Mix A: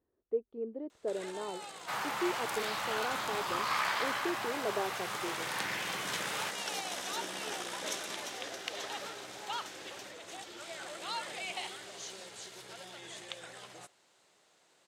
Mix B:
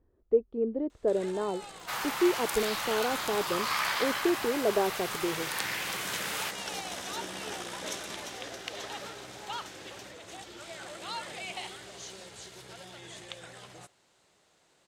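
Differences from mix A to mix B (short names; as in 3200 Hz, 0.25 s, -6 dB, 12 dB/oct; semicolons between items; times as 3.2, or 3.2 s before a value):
speech +7.0 dB; second sound: add tilt +2.5 dB/oct; master: remove HPF 290 Hz 6 dB/oct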